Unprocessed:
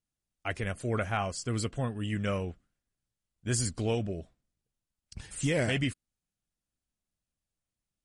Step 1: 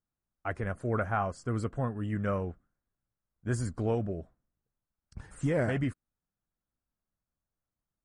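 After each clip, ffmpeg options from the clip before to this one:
ffmpeg -i in.wav -af "highshelf=frequency=2000:width_type=q:width=1.5:gain=-12.5" out.wav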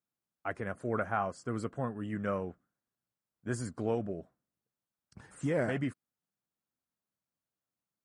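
ffmpeg -i in.wav -af "highpass=150,volume=-1.5dB" out.wav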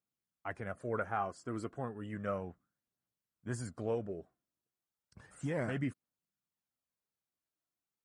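ffmpeg -i in.wav -af "aphaser=in_gain=1:out_gain=1:delay=3.2:decay=0.34:speed=0.33:type=triangular,volume=-4dB" out.wav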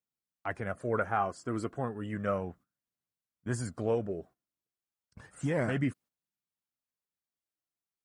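ffmpeg -i in.wav -af "agate=range=-10dB:threshold=-59dB:ratio=16:detection=peak,volume=5.5dB" out.wav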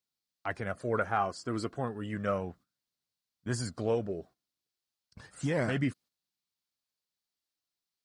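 ffmpeg -i in.wav -af "equalizer=frequency=4400:width=1.5:gain=10.5" out.wav

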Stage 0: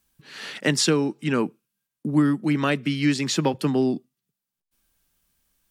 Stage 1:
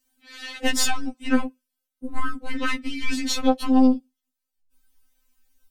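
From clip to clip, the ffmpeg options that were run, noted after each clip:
ffmpeg -i in.wav -af "asubboost=boost=4.5:cutoff=70,aeval=exprs='0.376*(cos(1*acos(clip(val(0)/0.376,-1,1)))-cos(1*PI/2))+0.0841*(cos(4*acos(clip(val(0)/0.376,-1,1)))-cos(4*PI/2))':channel_layout=same,afftfilt=real='re*3.46*eq(mod(b,12),0)':imag='im*3.46*eq(mod(b,12),0)':win_size=2048:overlap=0.75,volume=1dB" out.wav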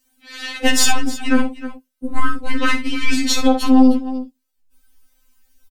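ffmpeg -i in.wav -filter_complex "[0:a]asplit=2[link_01][link_02];[link_02]aecho=0:1:57|310:0.282|0.158[link_03];[link_01][link_03]amix=inputs=2:normalize=0,alimiter=level_in=8dB:limit=-1dB:release=50:level=0:latency=1,volume=-1dB" out.wav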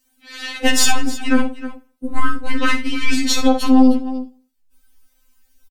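ffmpeg -i in.wav -af "aecho=1:1:82|164|246:0.0708|0.0276|0.0108" out.wav

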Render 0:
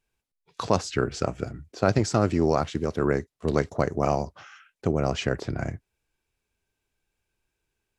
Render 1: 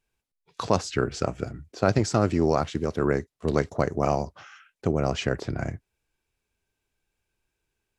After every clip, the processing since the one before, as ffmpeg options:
ffmpeg -i in.wav -af anull out.wav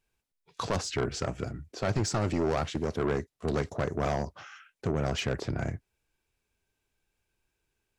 ffmpeg -i in.wav -af "asoftclip=type=tanh:threshold=-22dB" out.wav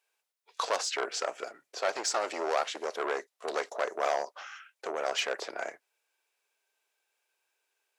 ffmpeg -i in.wav -af "highpass=frequency=500:width=0.5412,highpass=frequency=500:width=1.3066,volume=3dB" out.wav

